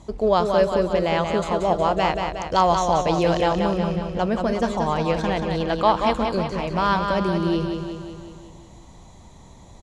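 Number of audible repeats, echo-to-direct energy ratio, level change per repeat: 7, -3.5 dB, -4.5 dB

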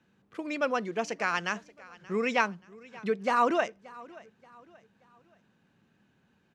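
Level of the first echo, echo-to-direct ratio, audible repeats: -21.5 dB, -21.0 dB, 2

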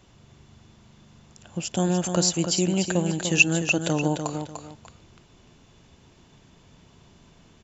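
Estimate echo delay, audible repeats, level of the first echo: 0.296 s, 2, -7.0 dB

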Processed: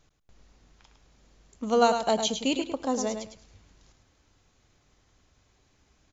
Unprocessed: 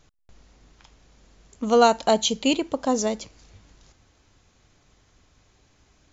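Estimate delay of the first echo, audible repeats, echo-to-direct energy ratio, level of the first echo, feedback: 0.105 s, 2, -7.5 dB, -7.5 dB, 20%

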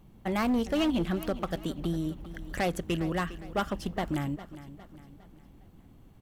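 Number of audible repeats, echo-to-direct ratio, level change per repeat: 3, -14.0 dB, -7.0 dB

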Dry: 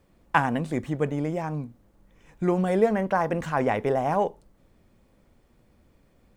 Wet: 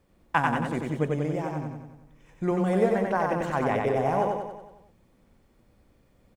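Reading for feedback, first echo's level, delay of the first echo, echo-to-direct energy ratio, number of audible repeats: 54%, -3.0 dB, 92 ms, -1.5 dB, 6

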